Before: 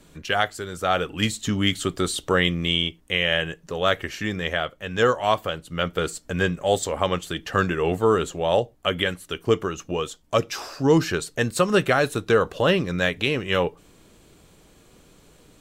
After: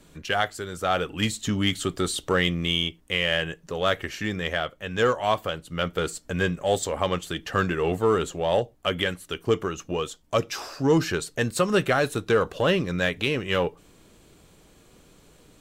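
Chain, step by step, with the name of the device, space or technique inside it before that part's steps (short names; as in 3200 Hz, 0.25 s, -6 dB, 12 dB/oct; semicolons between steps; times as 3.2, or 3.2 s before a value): parallel distortion (in parallel at -8.5 dB: hard clip -20 dBFS, distortion -8 dB); on the sum: gain -4 dB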